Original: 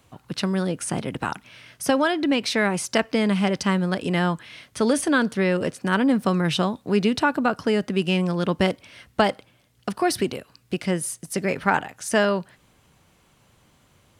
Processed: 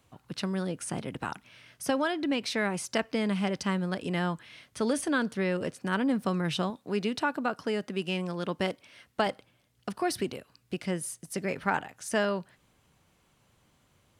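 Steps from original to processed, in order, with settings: 6.7–9.27 low shelf 120 Hz -11.5 dB; gain -7.5 dB

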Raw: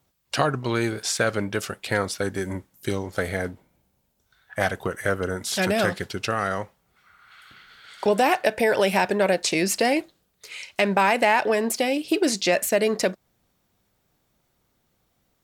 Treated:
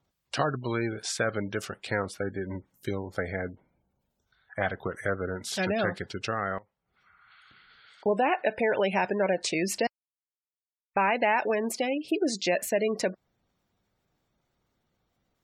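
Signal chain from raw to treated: high shelf 9700 Hz -6.5 dB; 9.87–10.96 mute; spectral gate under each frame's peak -25 dB strong; 2–2.55 bell 5100 Hz -7 dB 1.6 oct; 6.58–8.06 compressor 6:1, threshold -48 dBFS, peak gain reduction 20.5 dB; gain -5 dB

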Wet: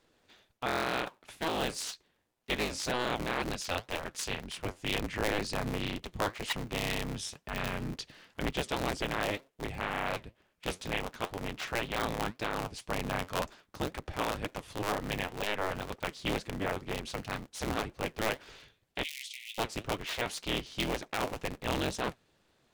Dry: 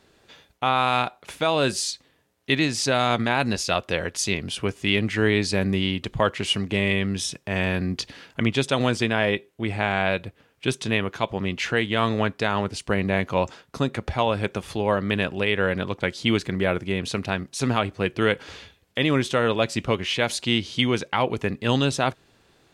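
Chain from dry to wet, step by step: cycle switcher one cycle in 3, inverted; 19.03–19.58 steep high-pass 2100 Hz 96 dB/oct; flange 2 Hz, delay 2 ms, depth 9.8 ms, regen +66%; gain -6.5 dB

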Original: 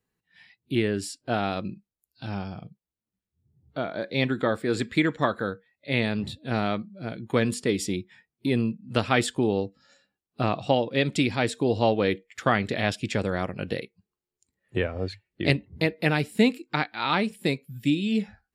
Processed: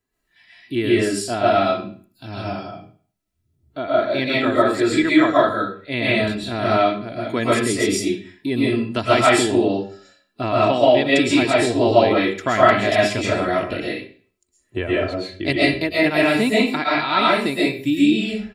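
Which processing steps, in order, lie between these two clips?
comb 3 ms, depth 55%; reverb RT60 0.45 s, pre-delay 90 ms, DRR -7 dB

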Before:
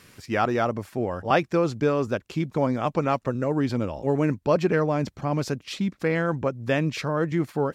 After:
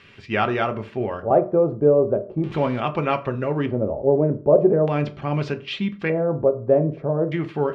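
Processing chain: 2.37–2.8 zero-crossing step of -35.5 dBFS; LFO low-pass square 0.41 Hz 600–2900 Hz; on a send: reverb RT60 0.40 s, pre-delay 3 ms, DRR 6.5 dB

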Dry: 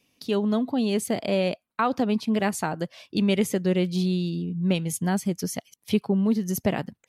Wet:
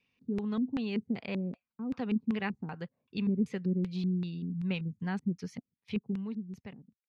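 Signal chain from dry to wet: ending faded out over 1.58 s; LFO low-pass square 2.6 Hz 280–3000 Hz; thirty-one-band EQ 315 Hz -11 dB, 630 Hz -12 dB, 3150 Hz -11 dB; gain -8.5 dB

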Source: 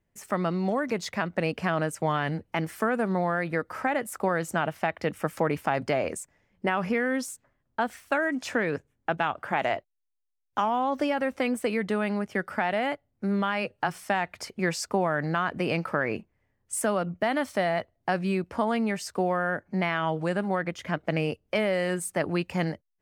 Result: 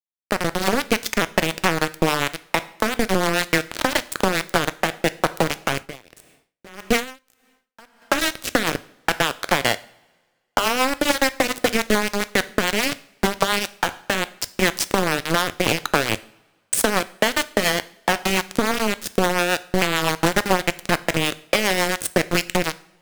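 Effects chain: low shelf 170 Hz -6.5 dB; notches 50/100/150/200/250/300/350/400 Hz; compressor 12:1, threshold -32 dBFS, peak gain reduction 12.5 dB; sample gate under -31 dBFS; rotary speaker horn 7 Hz; reverb, pre-delay 3 ms, DRR 14 dB; maximiser +24.5 dB; 5.75–8.02 dB-linear tremolo 1.7 Hz, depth 27 dB; gain -2.5 dB

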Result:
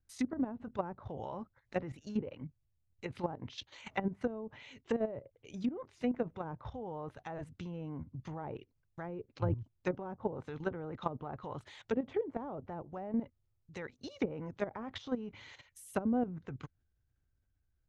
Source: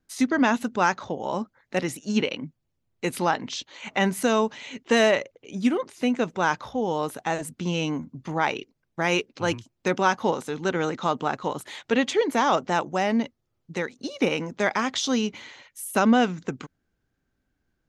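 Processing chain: resonant low shelf 140 Hz +12.5 dB, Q 1.5; treble ducked by the level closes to 460 Hz, closed at -19.5 dBFS; level quantiser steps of 12 dB; gain -5.5 dB

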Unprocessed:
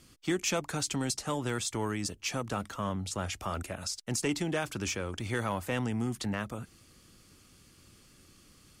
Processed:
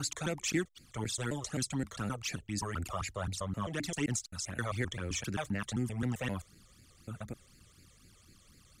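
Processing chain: slices in reverse order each 0.131 s, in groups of 7; phaser stages 12, 4 Hz, lowest notch 250–1100 Hz

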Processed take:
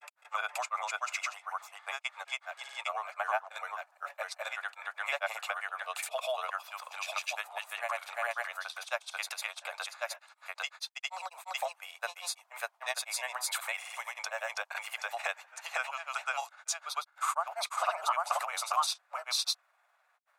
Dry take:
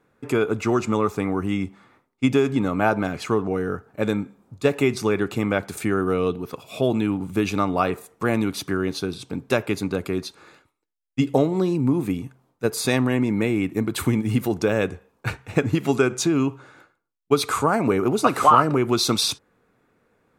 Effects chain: steep high-pass 620 Hz 72 dB/oct; compressor 2:1, threshold -31 dBFS, peak gain reduction 11.5 dB; grains, grains 20/s, spray 0.688 s, pitch spread up and down by 0 st

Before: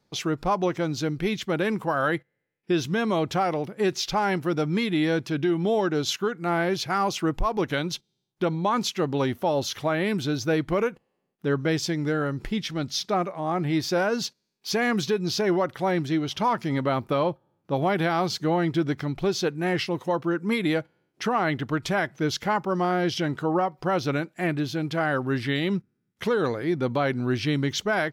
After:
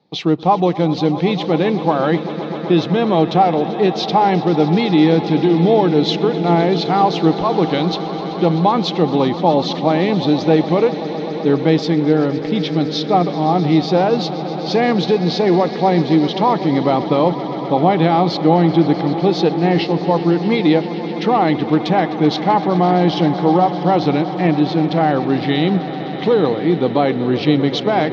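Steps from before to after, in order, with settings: speaker cabinet 130–4500 Hz, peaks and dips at 170 Hz +9 dB, 300 Hz +7 dB, 470 Hz +5 dB, 790 Hz +9 dB, 1500 Hz -9 dB, 3900 Hz +6 dB; swelling echo 0.128 s, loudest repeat 5, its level -16.5 dB; gain +5 dB

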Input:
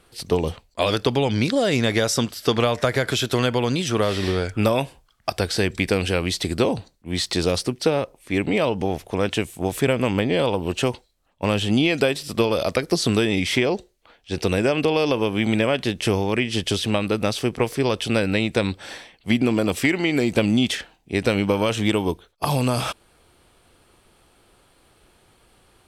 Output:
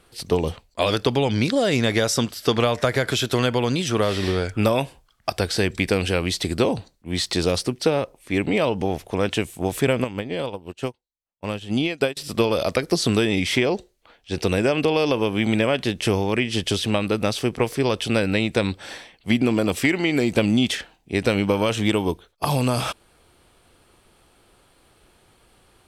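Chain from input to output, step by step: 10.04–12.17 upward expander 2.5:1, over -36 dBFS

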